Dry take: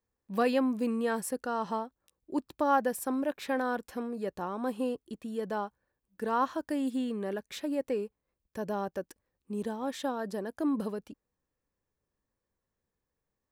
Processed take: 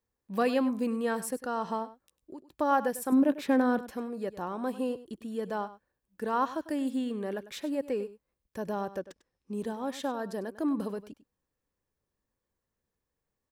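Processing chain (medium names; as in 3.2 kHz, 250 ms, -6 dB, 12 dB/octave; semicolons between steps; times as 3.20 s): 1.84–2.52 s: compression 10:1, threshold -43 dBFS, peak gain reduction 17.5 dB; 3.12–3.79 s: peaking EQ 250 Hz +9.5 dB 1.6 oct; delay 99 ms -15.5 dB; 8.99–9.53 s: decimation joined by straight lines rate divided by 3×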